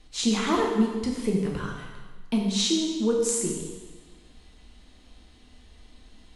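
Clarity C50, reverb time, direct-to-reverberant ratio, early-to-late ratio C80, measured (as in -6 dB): 2.5 dB, 1.3 s, -1.0 dB, 4.5 dB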